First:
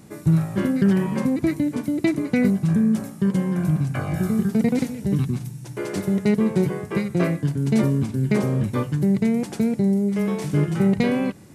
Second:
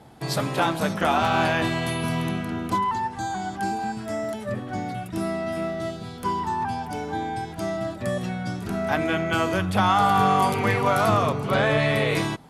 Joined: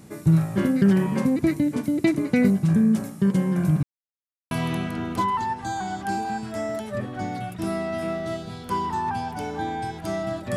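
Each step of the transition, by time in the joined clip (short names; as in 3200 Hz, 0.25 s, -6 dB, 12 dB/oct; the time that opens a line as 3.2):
first
3.83–4.51 mute
4.51 switch to second from 2.05 s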